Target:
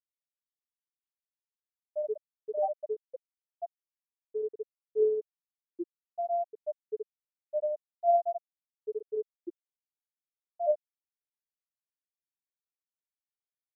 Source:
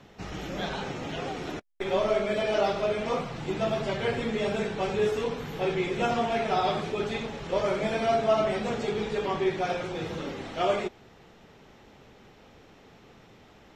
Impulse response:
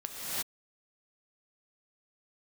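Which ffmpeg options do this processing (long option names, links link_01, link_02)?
-af "afftfilt=real='hypot(re,im)*cos(PI*b)':imag='0':win_size=2048:overlap=0.75,afftfilt=real='re*gte(hypot(re,im),0.316)':imag='im*gte(hypot(re,im),0.316)':win_size=1024:overlap=0.75,volume=3dB"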